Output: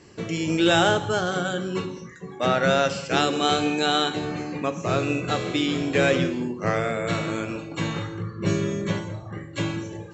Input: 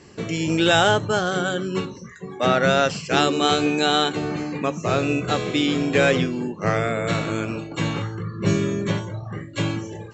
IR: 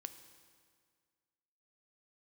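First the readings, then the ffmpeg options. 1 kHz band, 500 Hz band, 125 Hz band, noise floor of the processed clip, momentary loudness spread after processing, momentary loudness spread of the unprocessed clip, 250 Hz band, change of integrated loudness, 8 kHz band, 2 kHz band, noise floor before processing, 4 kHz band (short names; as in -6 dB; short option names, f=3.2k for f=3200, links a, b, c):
-2.5 dB, -2.5 dB, -3.0 dB, -41 dBFS, 11 LU, 11 LU, -2.0 dB, -2.5 dB, -2.5 dB, -2.5 dB, -40 dBFS, -2.5 dB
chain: -filter_complex "[1:a]atrim=start_sample=2205,afade=t=out:st=0.29:d=0.01,atrim=end_sample=13230[a];[0:a][a]afir=irnorm=-1:irlink=0,volume=2dB"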